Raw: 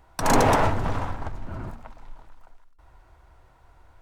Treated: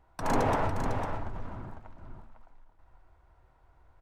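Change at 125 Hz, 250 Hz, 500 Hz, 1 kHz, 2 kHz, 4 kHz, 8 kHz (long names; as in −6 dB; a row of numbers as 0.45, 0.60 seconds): −7.0, −7.0, −7.0, −7.5, −9.0, −12.0, −14.5 decibels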